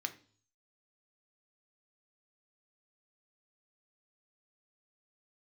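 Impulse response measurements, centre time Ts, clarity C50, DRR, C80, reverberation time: 6 ms, 15.0 dB, 6.5 dB, 20.0 dB, 0.45 s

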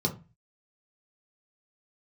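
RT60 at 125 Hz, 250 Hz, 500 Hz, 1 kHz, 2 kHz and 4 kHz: 0.50, 0.40, 0.30, 0.30, 0.30, 0.20 s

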